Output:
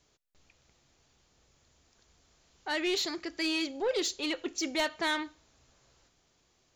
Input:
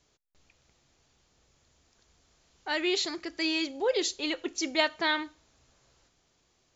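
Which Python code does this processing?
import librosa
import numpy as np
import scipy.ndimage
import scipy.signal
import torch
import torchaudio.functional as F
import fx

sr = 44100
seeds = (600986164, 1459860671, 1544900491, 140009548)

y = 10.0 ** (-23.5 / 20.0) * np.tanh(x / 10.0 ** (-23.5 / 20.0))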